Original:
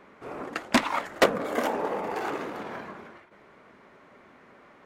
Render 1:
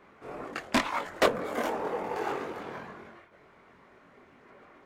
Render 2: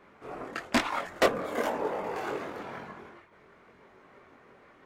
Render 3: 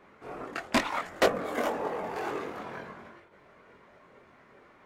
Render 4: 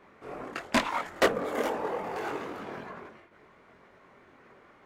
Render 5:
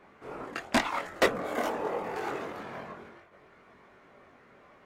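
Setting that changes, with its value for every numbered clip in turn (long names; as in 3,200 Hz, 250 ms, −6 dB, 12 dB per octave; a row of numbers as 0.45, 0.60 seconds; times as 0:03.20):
multi-voice chorus, speed: 1.8, 1, 0.56, 2.8, 0.22 Hertz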